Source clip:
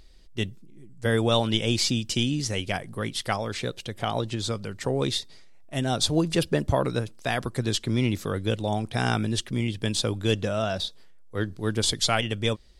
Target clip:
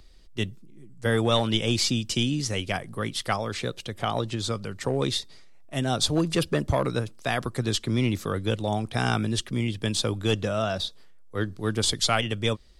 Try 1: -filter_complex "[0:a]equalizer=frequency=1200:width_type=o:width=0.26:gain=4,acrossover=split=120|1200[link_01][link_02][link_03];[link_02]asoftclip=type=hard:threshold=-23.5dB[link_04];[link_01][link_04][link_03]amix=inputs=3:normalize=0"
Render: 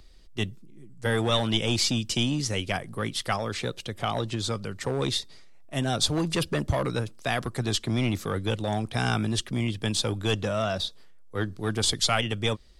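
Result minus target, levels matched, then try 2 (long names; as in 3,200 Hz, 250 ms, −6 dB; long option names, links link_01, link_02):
hard clipping: distortion +10 dB
-filter_complex "[0:a]equalizer=frequency=1200:width_type=o:width=0.26:gain=4,acrossover=split=120|1200[link_01][link_02][link_03];[link_02]asoftclip=type=hard:threshold=-17.5dB[link_04];[link_01][link_04][link_03]amix=inputs=3:normalize=0"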